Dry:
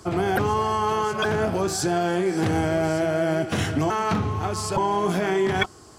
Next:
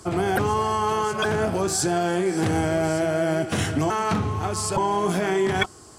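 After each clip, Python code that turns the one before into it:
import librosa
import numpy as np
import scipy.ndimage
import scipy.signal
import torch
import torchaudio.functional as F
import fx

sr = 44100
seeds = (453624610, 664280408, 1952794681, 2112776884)

y = fx.peak_eq(x, sr, hz=8800.0, db=6.5, octaves=0.67)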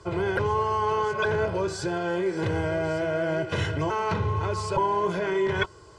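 y = fx.rider(x, sr, range_db=10, speed_s=0.5)
y = scipy.signal.sosfilt(scipy.signal.butter(2, 3900.0, 'lowpass', fs=sr, output='sos'), y)
y = y + 0.79 * np.pad(y, (int(2.0 * sr / 1000.0), 0))[:len(y)]
y = y * 10.0 ** (-4.5 / 20.0)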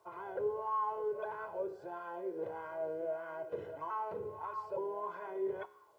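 y = fx.wah_lfo(x, sr, hz=1.6, low_hz=440.0, high_hz=1100.0, q=4.2)
y = fx.quant_dither(y, sr, seeds[0], bits=12, dither='none')
y = fx.comb_fb(y, sr, f0_hz=69.0, decay_s=0.76, harmonics='all', damping=0.0, mix_pct=50)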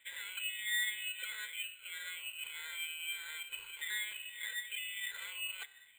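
y = fx.dynamic_eq(x, sr, hz=500.0, q=0.72, threshold_db=-49.0, ratio=4.0, max_db=-7)
y = fx.freq_invert(y, sr, carrier_hz=3000)
y = np.repeat(scipy.signal.resample_poly(y, 1, 8), 8)[:len(y)]
y = y * 10.0 ** (3.0 / 20.0)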